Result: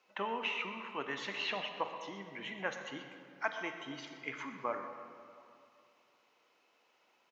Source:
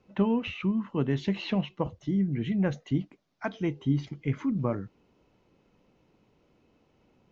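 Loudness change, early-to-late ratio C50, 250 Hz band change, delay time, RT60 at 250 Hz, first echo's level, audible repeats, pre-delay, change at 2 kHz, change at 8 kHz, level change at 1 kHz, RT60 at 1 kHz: -9.5 dB, 6.0 dB, -20.0 dB, 0.122 s, 2.5 s, -15.0 dB, 1, 36 ms, +3.0 dB, n/a, +1.0 dB, 2.5 s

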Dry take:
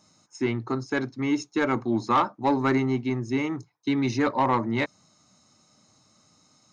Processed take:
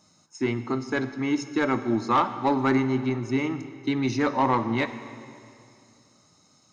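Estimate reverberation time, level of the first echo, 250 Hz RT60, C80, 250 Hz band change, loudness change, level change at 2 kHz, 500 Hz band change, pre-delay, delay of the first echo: 2.5 s, none, 2.7 s, 12.5 dB, +0.5 dB, +0.5 dB, +0.5 dB, +0.5 dB, 9 ms, none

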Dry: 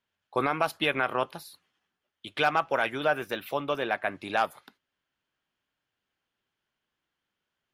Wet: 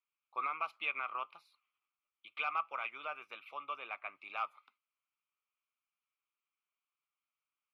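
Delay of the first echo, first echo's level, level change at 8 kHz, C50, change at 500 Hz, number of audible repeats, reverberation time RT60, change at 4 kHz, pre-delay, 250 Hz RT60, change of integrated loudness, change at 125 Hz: none, none, under -25 dB, none, -22.5 dB, none, none, -15.0 dB, none, none, -11.5 dB, under -35 dB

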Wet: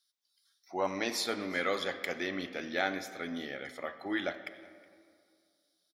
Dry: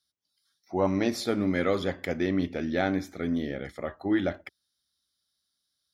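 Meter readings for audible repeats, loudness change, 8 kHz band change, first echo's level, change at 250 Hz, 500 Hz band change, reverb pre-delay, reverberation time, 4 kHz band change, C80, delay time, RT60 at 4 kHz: 1, -6.0 dB, +2.0 dB, -23.5 dB, -11.0 dB, -6.5 dB, 10 ms, 2.2 s, +2.0 dB, 12.5 dB, 0.368 s, 1.2 s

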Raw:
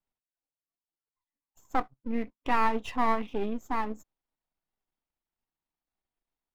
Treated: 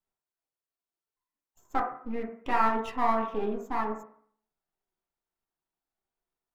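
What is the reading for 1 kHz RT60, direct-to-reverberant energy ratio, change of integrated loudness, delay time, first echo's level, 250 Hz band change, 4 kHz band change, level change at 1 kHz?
0.60 s, -1.0 dB, +1.0 dB, none, none, -1.5 dB, -3.0 dB, +1.0 dB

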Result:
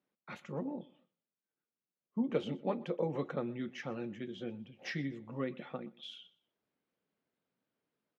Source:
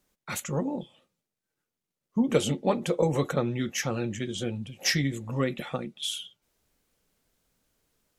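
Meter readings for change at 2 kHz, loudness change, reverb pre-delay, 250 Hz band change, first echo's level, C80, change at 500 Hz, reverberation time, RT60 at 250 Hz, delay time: -12.0 dB, -10.0 dB, none, -9.0 dB, -22.0 dB, none, -9.0 dB, none, none, 0.122 s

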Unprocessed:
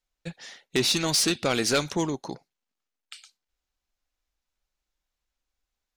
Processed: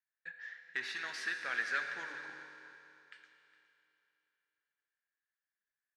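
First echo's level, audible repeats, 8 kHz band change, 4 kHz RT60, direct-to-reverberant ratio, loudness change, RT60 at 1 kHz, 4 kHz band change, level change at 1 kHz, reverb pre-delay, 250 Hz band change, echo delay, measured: -17.0 dB, 1, -26.5 dB, 2.9 s, 3.5 dB, -13.5 dB, 3.0 s, -20.0 dB, -11.5 dB, 6 ms, -30.0 dB, 0.412 s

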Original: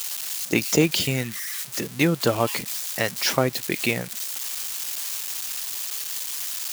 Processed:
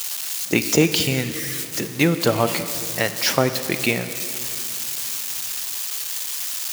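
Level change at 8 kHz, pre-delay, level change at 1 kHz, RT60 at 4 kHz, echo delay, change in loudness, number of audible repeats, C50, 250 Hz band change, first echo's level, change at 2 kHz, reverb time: +3.0 dB, 33 ms, +3.0 dB, 2.6 s, none, +3.0 dB, none, 10.5 dB, +3.0 dB, none, +3.0 dB, 2.9 s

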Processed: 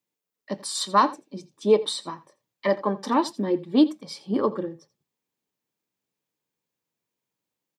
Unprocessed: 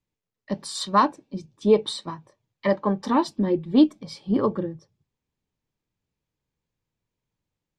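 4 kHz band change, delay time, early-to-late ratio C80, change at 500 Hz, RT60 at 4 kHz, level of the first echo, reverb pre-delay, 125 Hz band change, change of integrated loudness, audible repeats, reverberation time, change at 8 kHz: +1.5 dB, 84 ms, none, 0.0 dB, none, -18.5 dB, none, -5.5 dB, -0.5 dB, 1, none, n/a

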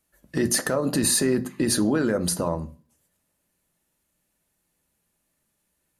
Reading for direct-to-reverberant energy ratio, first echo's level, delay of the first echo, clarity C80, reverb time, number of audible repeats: 9.0 dB, none, none, 25.5 dB, 0.40 s, none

